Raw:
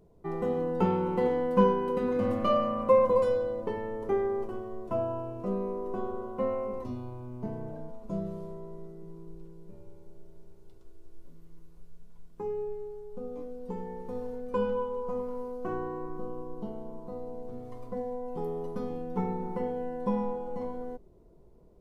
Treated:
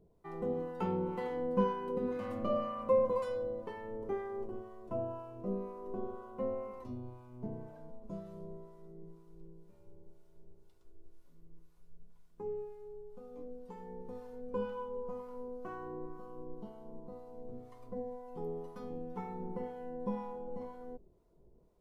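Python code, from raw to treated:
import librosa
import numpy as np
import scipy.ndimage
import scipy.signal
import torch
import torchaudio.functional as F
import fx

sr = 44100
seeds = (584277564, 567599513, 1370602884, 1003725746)

y = fx.harmonic_tremolo(x, sr, hz=2.0, depth_pct=70, crossover_hz=770.0)
y = y * librosa.db_to_amplitude(-4.5)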